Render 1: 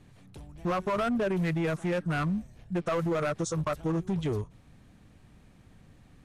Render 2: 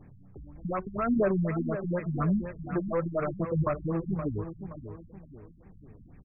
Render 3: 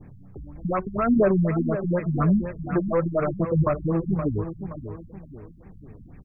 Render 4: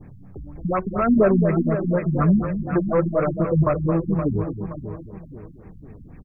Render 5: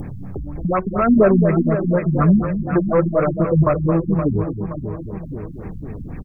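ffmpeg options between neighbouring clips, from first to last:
-af "aphaser=in_gain=1:out_gain=1:delay=3.8:decay=0.37:speed=0.83:type=sinusoidal,aecho=1:1:522|1044|1566|2088:0.316|0.123|0.0481|0.0188,afftfilt=real='re*lt(b*sr/1024,240*pow(2700/240,0.5+0.5*sin(2*PI*4.1*pts/sr)))':imag='im*lt(b*sr/1024,240*pow(2700/240,0.5+0.5*sin(2*PI*4.1*pts/sr)))':win_size=1024:overlap=0.75"
-af "adynamicequalizer=threshold=0.00562:dfrequency=1900:dqfactor=0.74:tfrequency=1900:tqfactor=0.74:attack=5:release=100:ratio=0.375:range=2:mode=cutabove:tftype=bell,volume=6.5dB"
-af "aecho=1:1:221:0.335,volume=2.5dB"
-af "acompressor=mode=upward:threshold=-24dB:ratio=2.5,volume=3.5dB"

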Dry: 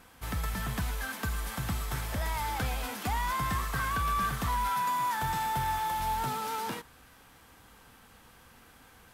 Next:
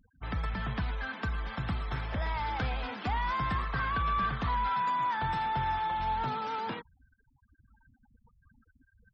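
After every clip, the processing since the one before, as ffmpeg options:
-filter_complex "[0:a]acrossover=split=5500[a][b];[b]acompressor=threshold=-58dB:ratio=4:attack=1:release=60[c];[a][c]amix=inputs=2:normalize=0,afftfilt=real='re*gte(hypot(re,im),0.00631)':imag='im*gte(hypot(re,im),0.00631)':win_size=1024:overlap=0.75"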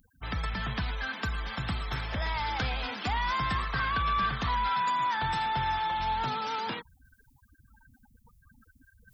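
-af "areverse,acompressor=mode=upward:threshold=-53dB:ratio=2.5,areverse,crystalizer=i=4:c=0"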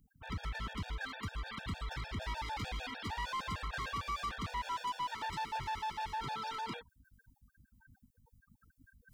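-af "aeval=exprs='val(0)+0.000794*(sin(2*PI*50*n/s)+sin(2*PI*2*50*n/s)/2+sin(2*PI*3*50*n/s)/3+sin(2*PI*4*50*n/s)/4+sin(2*PI*5*50*n/s)/5)':c=same,asoftclip=type=hard:threshold=-30.5dB,afftfilt=real='re*gt(sin(2*PI*6.6*pts/sr)*(1-2*mod(floor(b*sr/1024/470),2)),0)':imag='im*gt(sin(2*PI*6.6*pts/sr)*(1-2*mod(floor(b*sr/1024/470),2)),0)':win_size=1024:overlap=0.75,volume=-3dB"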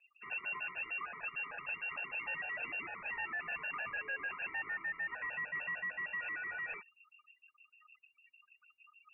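-af "asoftclip=type=tanh:threshold=-31.5dB,lowpass=f=2.4k:t=q:w=0.5098,lowpass=f=2.4k:t=q:w=0.6013,lowpass=f=2.4k:t=q:w=0.9,lowpass=f=2.4k:t=q:w=2.563,afreqshift=-2800"

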